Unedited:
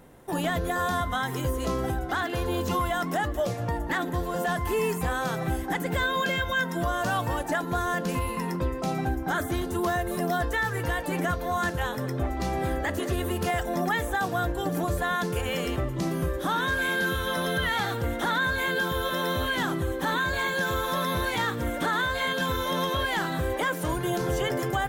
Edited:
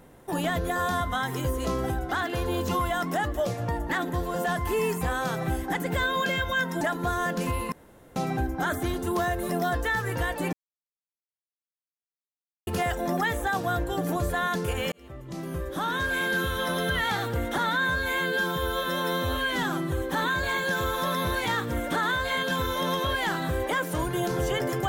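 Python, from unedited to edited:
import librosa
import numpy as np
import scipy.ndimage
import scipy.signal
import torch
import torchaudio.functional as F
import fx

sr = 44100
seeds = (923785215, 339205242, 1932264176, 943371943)

y = fx.edit(x, sr, fx.cut(start_s=6.81, length_s=0.68),
    fx.room_tone_fill(start_s=8.4, length_s=0.44),
    fx.silence(start_s=11.21, length_s=2.14),
    fx.fade_in_span(start_s=15.6, length_s=1.64, curve='qsin'),
    fx.stretch_span(start_s=18.26, length_s=1.56, factor=1.5), tone=tone)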